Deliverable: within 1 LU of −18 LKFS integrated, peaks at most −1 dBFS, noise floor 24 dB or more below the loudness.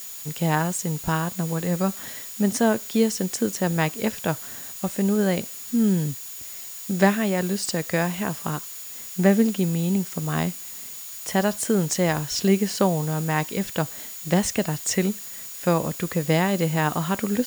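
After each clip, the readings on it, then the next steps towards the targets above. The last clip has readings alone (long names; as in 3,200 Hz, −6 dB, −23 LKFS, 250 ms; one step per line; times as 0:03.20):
interfering tone 6,900 Hz; level of the tone −42 dBFS; background noise floor −37 dBFS; target noise floor −49 dBFS; integrated loudness −24.5 LKFS; sample peak −4.5 dBFS; target loudness −18.0 LKFS
→ notch filter 6,900 Hz, Q 30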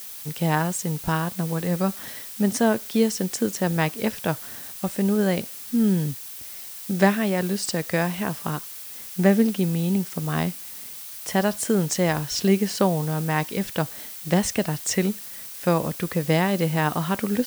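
interfering tone none found; background noise floor −38 dBFS; target noise floor −48 dBFS
→ broadband denoise 10 dB, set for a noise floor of −38 dBFS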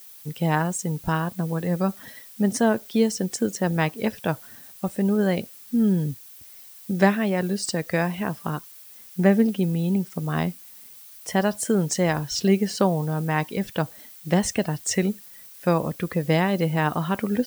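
background noise floor −46 dBFS; target noise floor −49 dBFS
→ broadband denoise 6 dB, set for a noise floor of −46 dBFS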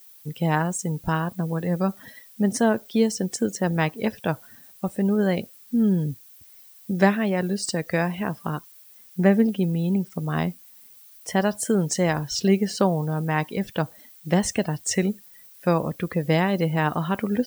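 background noise floor −50 dBFS; integrated loudness −24.5 LKFS; sample peak −4.5 dBFS; target loudness −18.0 LKFS
→ level +6.5 dB
brickwall limiter −1 dBFS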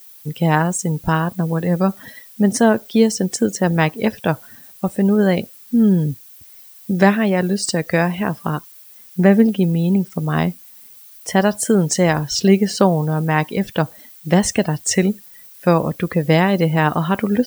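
integrated loudness −18.0 LKFS; sample peak −1.0 dBFS; background noise floor −43 dBFS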